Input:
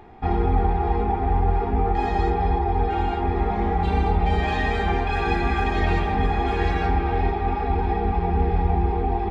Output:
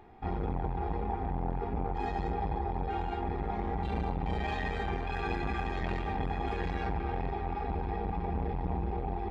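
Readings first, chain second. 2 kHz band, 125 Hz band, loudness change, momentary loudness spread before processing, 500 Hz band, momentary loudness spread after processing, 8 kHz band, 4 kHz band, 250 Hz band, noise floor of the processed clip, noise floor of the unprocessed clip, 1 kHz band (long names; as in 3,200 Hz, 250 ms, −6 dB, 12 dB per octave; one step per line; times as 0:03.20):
−11.5 dB, −11.5 dB, −11.5 dB, 2 LU, −11.0 dB, 1 LU, can't be measured, −11.0 dB, −10.0 dB, −36 dBFS, −25 dBFS, −11.5 dB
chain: saturating transformer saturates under 270 Hz
level −8.5 dB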